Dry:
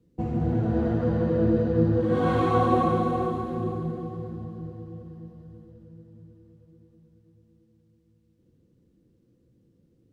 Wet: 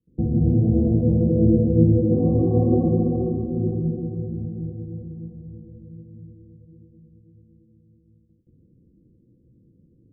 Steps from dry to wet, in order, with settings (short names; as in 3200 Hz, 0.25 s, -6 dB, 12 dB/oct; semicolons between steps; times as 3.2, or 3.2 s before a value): gate with hold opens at -56 dBFS; Gaussian blur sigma 19 samples; gain +8 dB